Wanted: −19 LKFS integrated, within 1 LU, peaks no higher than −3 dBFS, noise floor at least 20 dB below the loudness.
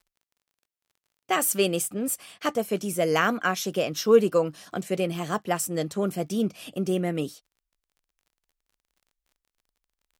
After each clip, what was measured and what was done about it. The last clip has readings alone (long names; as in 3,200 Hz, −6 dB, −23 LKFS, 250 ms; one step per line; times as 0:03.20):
crackle rate 29 per second; integrated loudness −26.0 LKFS; sample peak −7.5 dBFS; target loudness −19.0 LKFS
→ click removal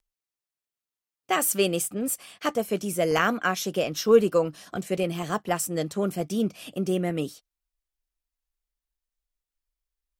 crackle rate 0.49 per second; integrated loudness −26.0 LKFS; sample peak −7.5 dBFS; target loudness −19.0 LKFS
→ level +7 dB
brickwall limiter −3 dBFS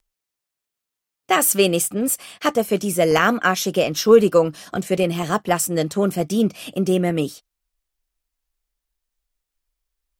integrated loudness −19.5 LKFS; sample peak −3.0 dBFS; background noise floor −84 dBFS